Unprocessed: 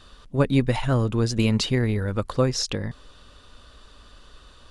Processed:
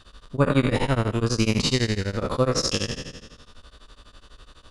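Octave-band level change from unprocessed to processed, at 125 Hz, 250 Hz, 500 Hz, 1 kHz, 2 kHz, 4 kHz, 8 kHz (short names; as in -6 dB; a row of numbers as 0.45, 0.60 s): -1.5, -0.5, +1.0, +2.5, +2.5, +3.0, +3.0 dB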